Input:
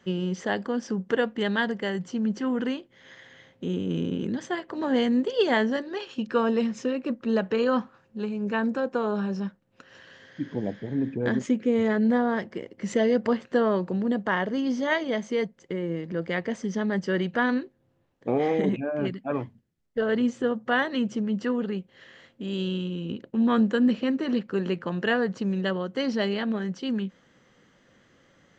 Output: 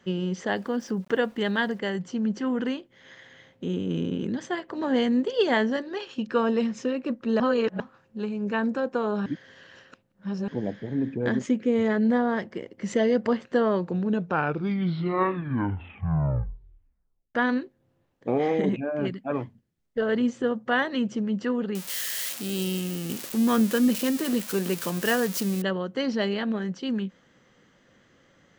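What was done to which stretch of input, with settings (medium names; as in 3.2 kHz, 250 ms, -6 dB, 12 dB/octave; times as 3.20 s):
0.55–1.79 s: small samples zeroed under -51.5 dBFS
7.40–7.80 s: reverse
9.26–10.48 s: reverse
13.77 s: tape stop 3.58 s
21.75–25.62 s: zero-crossing glitches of -20.5 dBFS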